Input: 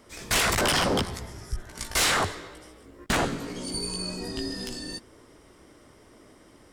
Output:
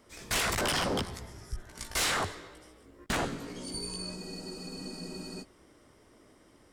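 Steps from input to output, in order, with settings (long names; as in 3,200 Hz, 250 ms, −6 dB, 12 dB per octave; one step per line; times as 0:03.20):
frozen spectrum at 0:04.17, 1.26 s
level −6 dB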